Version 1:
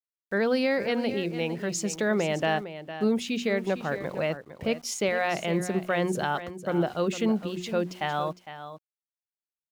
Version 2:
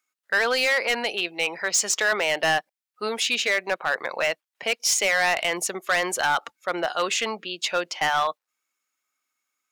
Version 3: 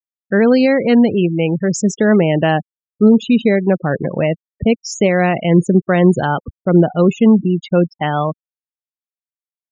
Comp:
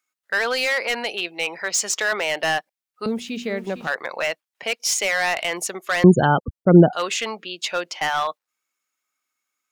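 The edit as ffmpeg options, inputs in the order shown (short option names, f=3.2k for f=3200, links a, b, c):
-filter_complex "[1:a]asplit=3[a][b][c];[a]atrim=end=3.062[d];[0:a]atrim=start=3.058:end=3.872[e];[b]atrim=start=3.868:end=6.042[f];[2:a]atrim=start=6.038:end=6.932[g];[c]atrim=start=6.928[h];[d][e]acrossfade=d=0.004:c1=hsin:c2=hsin[i];[i][f]acrossfade=d=0.004:c1=hsin:c2=hsin[j];[j][g]acrossfade=d=0.004:c1=hsin:c2=hsin[k];[k][h]acrossfade=d=0.004:c1=hsin:c2=hsin"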